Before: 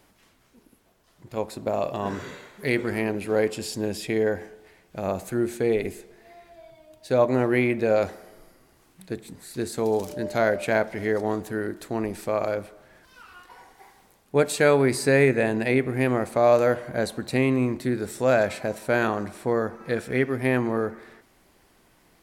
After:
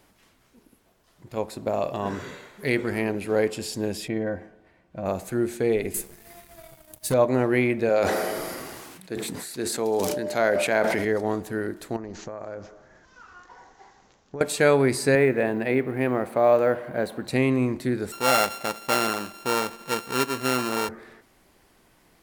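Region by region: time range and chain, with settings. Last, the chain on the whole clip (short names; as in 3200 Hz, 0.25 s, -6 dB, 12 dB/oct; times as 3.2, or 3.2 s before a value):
4.08–5.06 LPF 1300 Hz 6 dB/oct + notch comb 420 Hz
5.94–7.14 EQ curve 190 Hz 0 dB, 460 Hz -9 dB, 4000 Hz -5 dB, 11000 Hz +12 dB + sample leveller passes 3
7.89–11.05 HPF 270 Hz 6 dB/oct + sustainer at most 26 dB/s
11.96–14.41 band shelf 3300 Hz -9.5 dB 1.3 oct + compressor 10:1, threshold -31 dBFS + careless resampling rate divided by 3×, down none, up filtered
15.15–17.25 G.711 law mismatch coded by mu + HPF 190 Hz 6 dB/oct + bell 6600 Hz -13 dB 1.8 oct
18.12–20.89 sample sorter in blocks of 32 samples + bell 75 Hz -12.5 dB 2.2 oct
whole clip: dry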